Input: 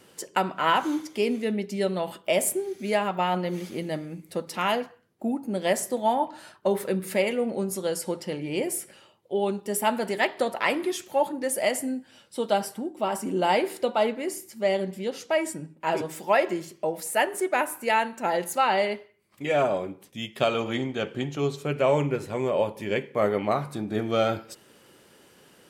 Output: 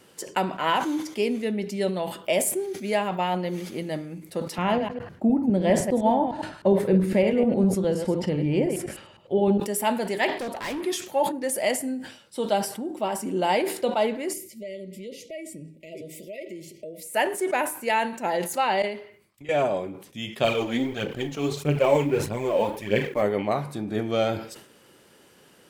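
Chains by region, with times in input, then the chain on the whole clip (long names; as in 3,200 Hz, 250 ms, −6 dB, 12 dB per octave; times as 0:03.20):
0:04.58–0:09.60: delay that plays each chunk backwards 102 ms, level −7 dB + RIAA equalisation playback + one half of a high-frequency compander encoder only
0:10.29–0:10.81: parametric band 270 Hz +8 dB 0.32 octaves + gain into a clipping stage and back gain 28.5 dB
0:14.33–0:17.14: dynamic equaliser 5,400 Hz, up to −4 dB, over −46 dBFS, Q 0.79 + downward compressor 3 to 1, threshold −37 dBFS + linear-phase brick-wall band-stop 670–1,900 Hz
0:18.82–0:19.49: downward compressor 12 to 1, threshold −41 dBFS + multiband upward and downward expander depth 100%
0:20.44–0:23.22: mu-law and A-law mismatch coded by A + phase shifter 1.6 Hz, delay 4.6 ms, feedback 58% + double-tracking delay 34 ms −13.5 dB
whole clip: dynamic equaliser 1,300 Hz, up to −6 dB, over −46 dBFS, Q 4; level that may fall only so fast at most 100 dB per second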